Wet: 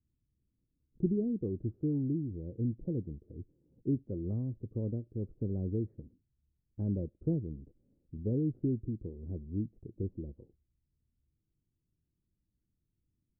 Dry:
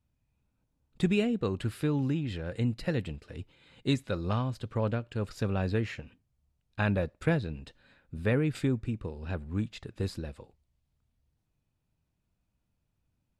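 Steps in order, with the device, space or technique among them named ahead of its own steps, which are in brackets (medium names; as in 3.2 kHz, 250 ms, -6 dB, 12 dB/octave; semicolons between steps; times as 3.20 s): under water (low-pass 410 Hz 24 dB/octave; peaking EQ 340 Hz +5 dB 0.42 oct); trim -4 dB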